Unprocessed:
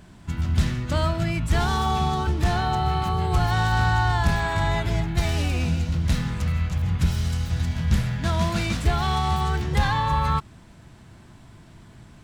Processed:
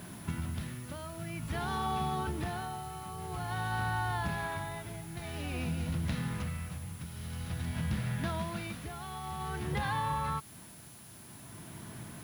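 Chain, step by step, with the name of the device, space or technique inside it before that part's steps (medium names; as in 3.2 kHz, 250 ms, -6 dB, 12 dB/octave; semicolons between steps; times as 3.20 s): medium wave at night (band-pass 110–3700 Hz; compression, threshold -34 dBFS, peak gain reduction 14 dB; tremolo 0.5 Hz, depth 68%; whistle 10 kHz -58 dBFS; white noise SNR 20 dB); trim +3.5 dB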